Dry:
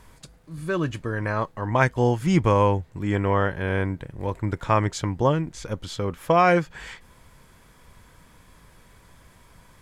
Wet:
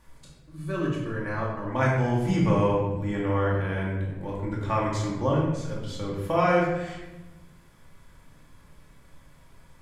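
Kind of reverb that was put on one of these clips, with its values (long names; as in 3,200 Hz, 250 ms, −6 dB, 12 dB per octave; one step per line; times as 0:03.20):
rectangular room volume 510 cubic metres, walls mixed, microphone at 2.4 metres
level −10 dB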